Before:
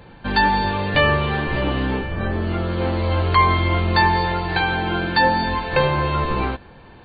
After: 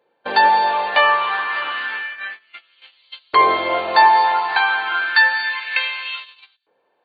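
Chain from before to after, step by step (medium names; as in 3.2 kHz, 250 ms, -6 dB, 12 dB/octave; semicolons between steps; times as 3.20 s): LFO high-pass saw up 0.3 Hz 440–4000 Hz; gate -30 dBFS, range -23 dB; trim +1 dB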